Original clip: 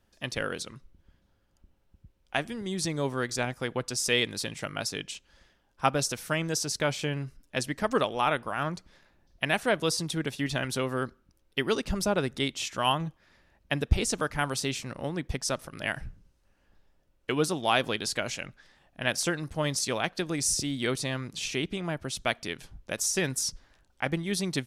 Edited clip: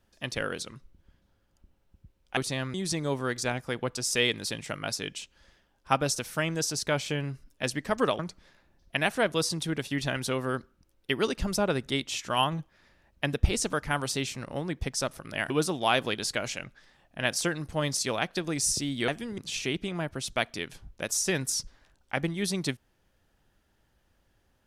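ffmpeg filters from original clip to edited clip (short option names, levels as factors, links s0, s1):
-filter_complex "[0:a]asplit=7[s0][s1][s2][s3][s4][s5][s6];[s0]atrim=end=2.372[s7];[s1]atrim=start=20.898:end=21.272[s8];[s2]atrim=start=2.668:end=8.122[s9];[s3]atrim=start=8.668:end=15.982[s10];[s4]atrim=start=17.318:end=20.902[s11];[s5]atrim=start=2.368:end=2.672[s12];[s6]atrim=start=21.268[s13];[s7][s8]acrossfade=d=0.004:c1=hsin:c2=hsin[s14];[s14][s9]acrossfade=d=0.004:c1=hsin:c2=hsin[s15];[s15][s10]acrossfade=d=0.004:c1=hsin:c2=hsin[s16];[s16][s11]acrossfade=d=0.004:c1=hsin:c2=hsin[s17];[s17][s12]acrossfade=d=0.004:c1=hsin:c2=hsin[s18];[s18][s13]acrossfade=d=0.004:c1=hsin:c2=hsin"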